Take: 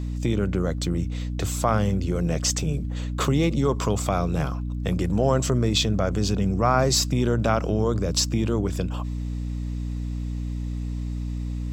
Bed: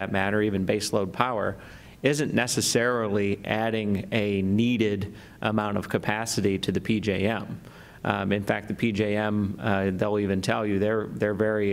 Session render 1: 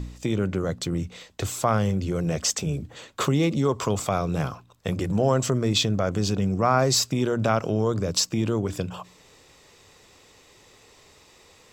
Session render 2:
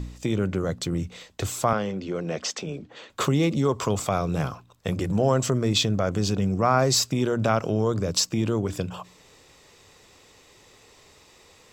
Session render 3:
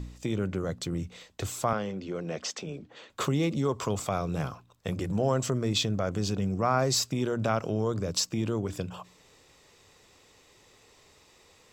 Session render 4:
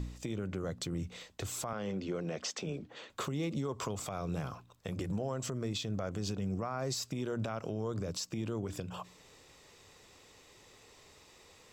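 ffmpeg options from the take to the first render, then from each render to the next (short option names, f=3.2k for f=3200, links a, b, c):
-af "bandreject=f=60:t=h:w=4,bandreject=f=120:t=h:w=4,bandreject=f=180:t=h:w=4,bandreject=f=240:t=h:w=4,bandreject=f=300:t=h:w=4"
-filter_complex "[0:a]asettb=1/sr,asplit=3[a][b][c];[a]atrim=end=1.734[d];[b]atrim=start=1.73:end=3.1,asetpts=PTS-STARTPTS,afade=t=in:d=0.004:c=qsin,afade=t=out:st=1.366:d=0.004:c=qsin,acrossover=split=190 5600:gain=0.112 1 0.1[e][f][g];[e][f][g]amix=inputs=3:normalize=0[h];[c]atrim=start=3.096[i];[d][h]acrossfade=d=0.004:c1=hsin:c2=qsin[j];[j][i]acrossfade=d=0.004:c1=qsin:c2=hsin"
-af "volume=-5dB"
-af "acompressor=threshold=-31dB:ratio=2.5,alimiter=level_in=2.5dB:limit=-24dB:level=0:latency=1:release=182,volume=-2.5dB"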